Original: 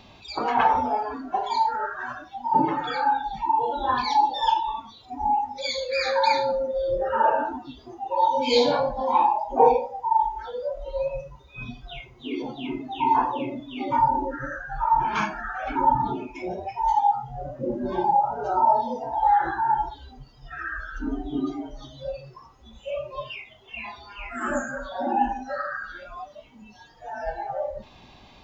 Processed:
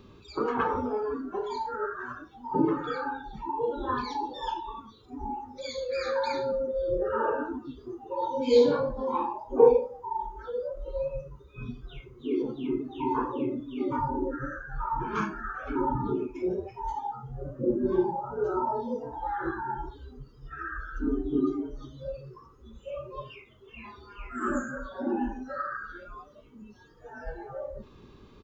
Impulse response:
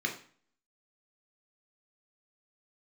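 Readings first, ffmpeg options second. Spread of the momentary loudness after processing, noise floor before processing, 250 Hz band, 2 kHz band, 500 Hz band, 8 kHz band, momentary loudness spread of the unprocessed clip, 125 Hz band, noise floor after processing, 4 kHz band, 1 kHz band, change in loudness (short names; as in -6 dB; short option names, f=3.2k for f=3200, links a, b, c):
15 LU, -51 dBFS, +1.0 dB, -7.0 dB, -0.5 dB, n/a, 17 LU, 0.0 dB, -54 dBFS, -11.5 dB, -11.5 dB, -5.5 dB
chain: -af "firequalizer=gain_entry='entry(270,0);entry(420,7);entry(700,-19);entry(1200,0);entry(2000,-12);entry(5300,-11);entry(9000,-3)':delay=0.05:min_phase=1"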